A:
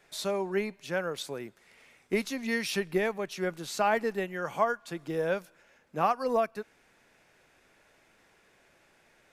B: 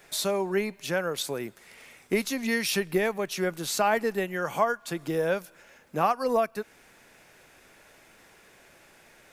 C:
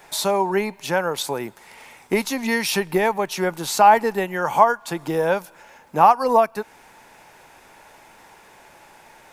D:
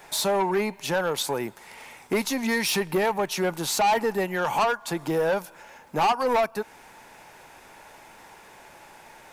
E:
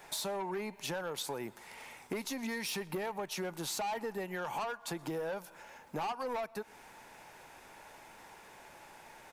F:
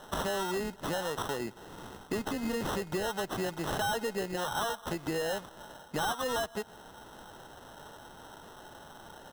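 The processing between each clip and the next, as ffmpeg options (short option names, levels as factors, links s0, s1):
-filter_complex "[0:a]highshelf=f=9900:g=10.5,asplit=2[s0][s1];[s1]acompressor=threshold=0.0141:ratio=6,volume=1.33[s2];[s0][s2]amix=inputs=2:normalize=0"
-af "equalizer=f=890:w=3.2:g=13,volume=1.68"
-af "asoftclip=type=tanh:threshold=0.126"
-filter_complex "[0:a]acompressor=threshold=0.0316:ratio=6,asplit=2[s0][s1];[s1]adelay=122.4,volume=0.0501,highshelf=f=4000:g=-2.76[s2];[s0][s2]amix=inputs=2:normalize=0,volume=0.531"
-af "acrusher=samples=19:mix=1:aa=0.000001,volume=1.68"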